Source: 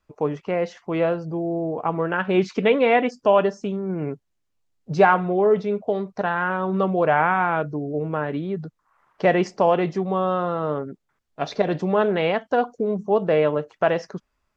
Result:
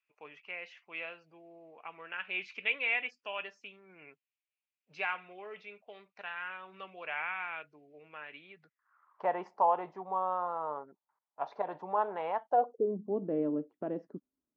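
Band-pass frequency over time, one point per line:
band-pass, Q 5.1
8.54 s 2500 Hz
9.26 s 920 Hz
12.43 s 920 Hz
12.96 s 280 Hz

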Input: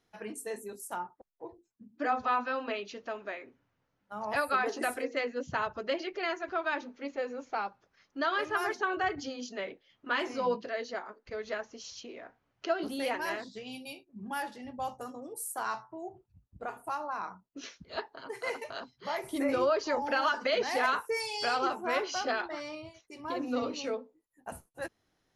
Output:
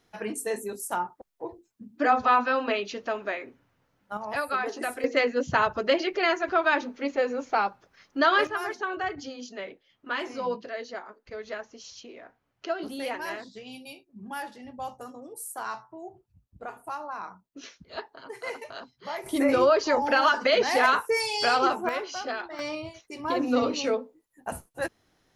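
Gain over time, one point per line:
+8 dB
from 4.17 s +0.5 dB
from 5.04 s +9 dB
from 8.47 s 0 dB
from 19.26 s +7 dB
from 21.89 s -1 dB
from 22.59 s +8 dB

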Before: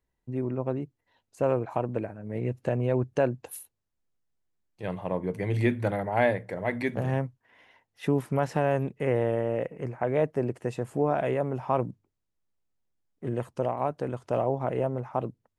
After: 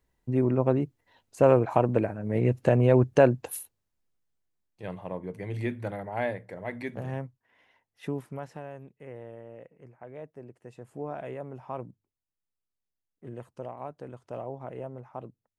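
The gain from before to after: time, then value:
3.29 s +6 dB
5.24 s -6.5 dB
8.06 s -6.5 dB
8.75 s -17.5 dB
10.55 s -17.5 dB
11.03 s -10.5 dB

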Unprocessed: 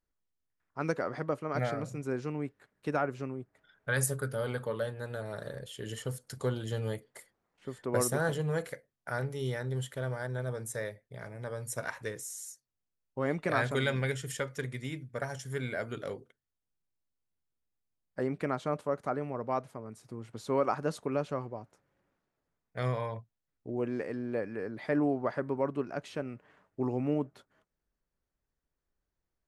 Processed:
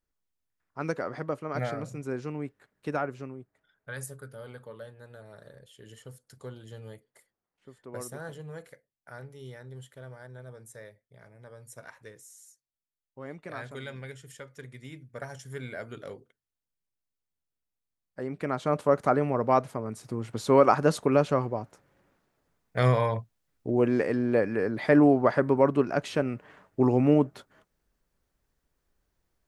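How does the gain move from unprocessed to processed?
2.97 s +0.5 dB
4.09 s -10 dB
14.42 s -10 dB
15.23 s -3 dB
18.22 s -3 dB
18.9 s +9.5 dB

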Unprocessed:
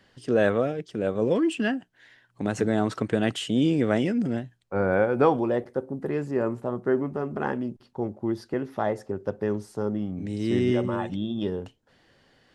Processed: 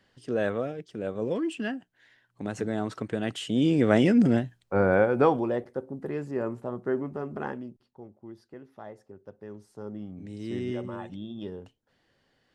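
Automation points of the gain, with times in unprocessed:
3.24 s -6 dB
4.21 s +6 dB
5.73 s -4.5 dB
7.4 s -4.5 dB
8.04 s -17 dB
9.39 s -17 dB
10.01 s -9 dB

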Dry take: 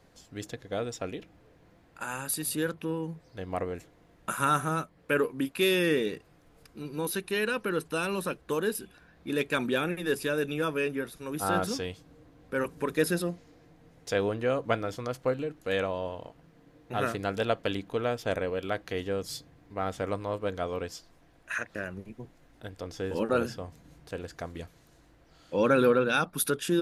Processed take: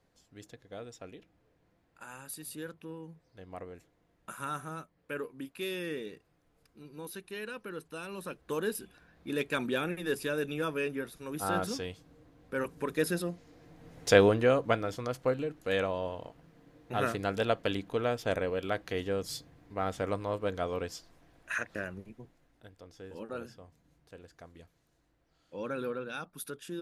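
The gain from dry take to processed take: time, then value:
8.07 s -11.5 dB
8.59 s -3.5 dB
13.3 s -3.5 dB
14.13 s +8 dB
14.77 s -1 dB
21.76 s -1 dB
22.84 s -13.5 dB

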